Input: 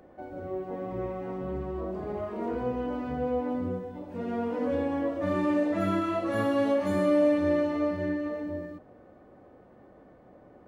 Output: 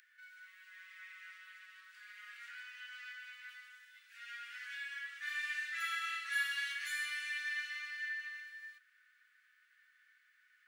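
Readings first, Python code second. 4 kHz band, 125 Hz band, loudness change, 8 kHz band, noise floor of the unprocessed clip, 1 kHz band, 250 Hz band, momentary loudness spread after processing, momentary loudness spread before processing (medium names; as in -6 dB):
+4.5 dB, under -40 dB, -10.5 dB, no reading, -55 dBFS, -15.5 dB, under -40 dB, 19 LU, 11 LU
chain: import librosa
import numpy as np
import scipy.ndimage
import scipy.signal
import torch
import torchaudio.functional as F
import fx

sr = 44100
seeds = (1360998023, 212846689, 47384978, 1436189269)

y = scipy.signal.sosfilt(scipy.signal.butter(12, 1500.0, 'highpass', fs=sr, output='sos'), x)
y = y * librosa.db_to_amplitude(4.5)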